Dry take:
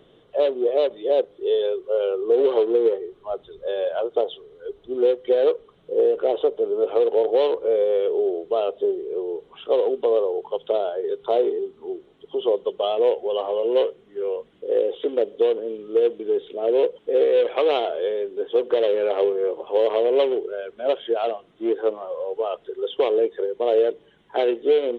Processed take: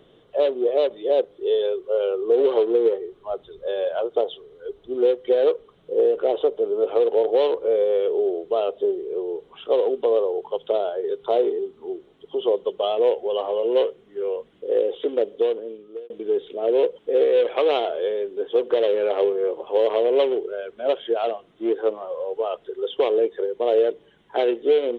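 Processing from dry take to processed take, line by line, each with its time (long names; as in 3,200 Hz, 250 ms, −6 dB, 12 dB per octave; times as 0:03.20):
0:15.03–0:16.10: fade out equal-power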